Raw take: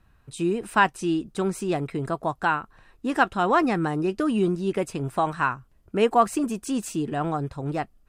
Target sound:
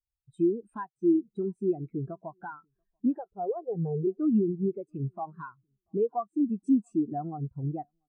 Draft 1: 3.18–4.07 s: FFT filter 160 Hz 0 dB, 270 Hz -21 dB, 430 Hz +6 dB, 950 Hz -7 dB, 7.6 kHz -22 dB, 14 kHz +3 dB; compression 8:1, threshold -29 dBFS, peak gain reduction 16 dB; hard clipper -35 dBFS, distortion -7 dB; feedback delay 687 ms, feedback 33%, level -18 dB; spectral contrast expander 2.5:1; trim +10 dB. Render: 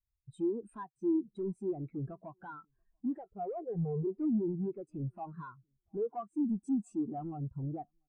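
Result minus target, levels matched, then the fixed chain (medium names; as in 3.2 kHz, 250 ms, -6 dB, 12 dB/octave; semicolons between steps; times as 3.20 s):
hard clipper: distortion +11 dB
3.18–4.07 s: FFT filter 160 Hz 0 dB, 270 Hz -21 dB, 430 Hz +6 dB, 950 Hz -7 dB, 7.6 kHz -22 dB, 14 kHz +3 dB; compression 8:1, threshold -29 dBFS, peak gain reduction 16 dB; hard clipper -26.5 dBFS, distortion -18 dB; feedback delay 687 ms, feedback 33%, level -18 dB; spectral contrast expander 2.5:1; trim +10 dB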